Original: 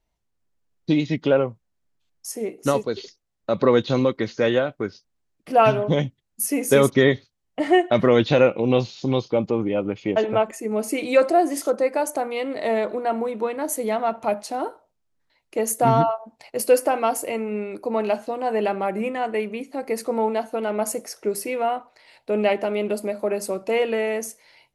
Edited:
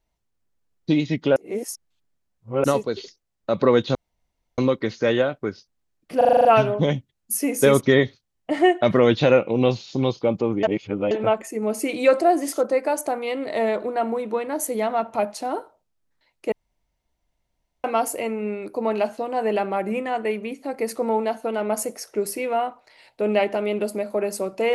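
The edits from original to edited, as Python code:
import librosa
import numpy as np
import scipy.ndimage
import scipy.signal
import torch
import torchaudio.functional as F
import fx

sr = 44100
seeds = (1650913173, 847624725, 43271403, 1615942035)

y = fx.edit(x, sr, fx.reverse_span(start_s=1.36, length_s=1.28),
    fx.insert_room_tone(at_s=3.95, length_s=0.63),
    fx.stutter(start_s=5.54, slice_s=0.04, count=8),
    fx.reverse_span(start_s=9.72, length_s=0.48),
    fx.room_tone_fill(start_s=15.61, length_s=1.32), tone=tone)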